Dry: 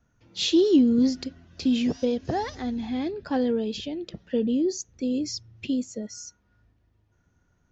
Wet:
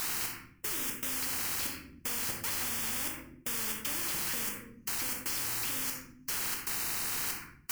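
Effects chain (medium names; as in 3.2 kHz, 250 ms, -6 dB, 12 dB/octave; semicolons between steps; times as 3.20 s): zero-crossing glitches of -16.5 dBFS; low-pass 4.3 kHz 24 dB/octave; peaking EQ 440 Hz -11.5 dB 0.33 oct; compression 6:1, threshold -32 dBFS, peak gain reduction 15.5 dB; flange 0.8 Hz, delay 9 ms, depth 8.1 ms, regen -45%; in parallel at -6.5 dB: word length cut 6-bit, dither triangular; on the sum: touch-sensitive phaser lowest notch 510 Hz, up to 1.3 kHz, full sweep at -21 dBFS; trance gate "xx...xx.xxx" 117 bpm -60 dB; simulated room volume 67 m³, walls mixed, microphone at 0.54 m; spectrum-flattening compressor 4:1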